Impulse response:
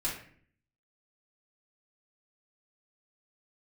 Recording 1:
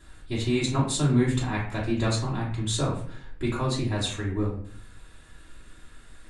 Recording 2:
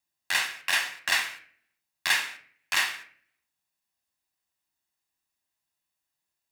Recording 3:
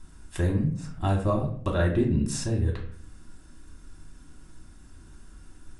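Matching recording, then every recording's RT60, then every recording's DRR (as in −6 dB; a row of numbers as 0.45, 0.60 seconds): 1; 0.55, 0.55, 0.55 seconds; −7.0, 7.0, −0.5 decibels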